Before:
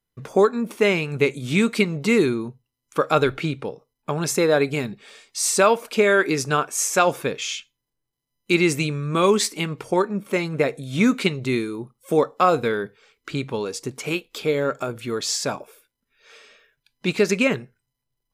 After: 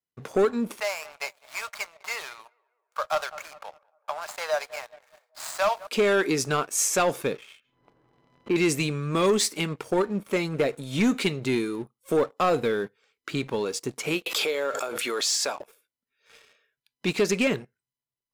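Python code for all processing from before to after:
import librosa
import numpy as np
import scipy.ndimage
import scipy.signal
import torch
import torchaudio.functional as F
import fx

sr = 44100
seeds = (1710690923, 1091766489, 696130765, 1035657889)

y = fx.chain(x, sr, fx.median_filter(points=15),
    fx.cheby1_highpass(hz=620.0, order=5),
    fx.echo_tape(ms=200, feedback_pct=65, wet_db=-16.0, lp_hz=1300.0, drive_db=10.0, wow_cents=27), at=(0.8, 5.87))
y = fx.chain(y, sr, fx.lowpass(hz=1200.0, slope=12),
    fx.low_shelf(hz=220.0, db=-5.5),
    fx.pre_swell(db_per_s=47.0), at=(7.37, 8.56))
y = fx.chain(y, sr, fx.highpass(hz=580.0, slope=12),
    fx.pre_swell(db_per_s=22.0), at=(14.26, 15.6))
y = fx.highpass(y, sr, hz=170.0, slope=6)
y = fx.dynamic_eq(y, sr, hz=1400.0, q=0.73, threshold_db=-30.0, ratio=4.0, max_db=-4)
y = fx.leveller(y, sr, passes=2)
y = y * librosa.db_to_amplitude(-7.5)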